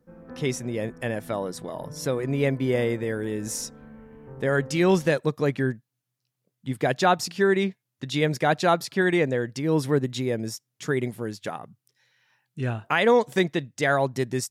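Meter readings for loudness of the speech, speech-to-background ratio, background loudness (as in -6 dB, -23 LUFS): -25.5 LUFS, 19.0 dB, -44.5 LUFS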